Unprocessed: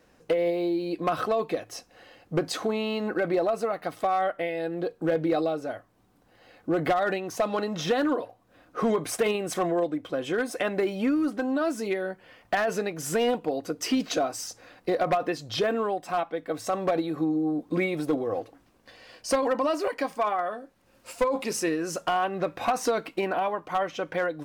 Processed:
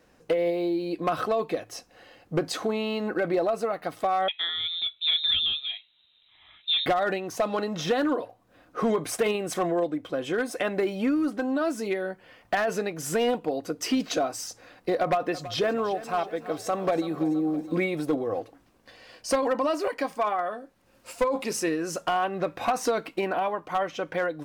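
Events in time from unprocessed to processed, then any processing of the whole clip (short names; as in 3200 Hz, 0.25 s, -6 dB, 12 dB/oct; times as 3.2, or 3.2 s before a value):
4.28–6.86 inverted band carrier 3900 Hz
14.98–17.79 lo-fi delay 0.329 s, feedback 55%, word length 9-bit, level -15 dB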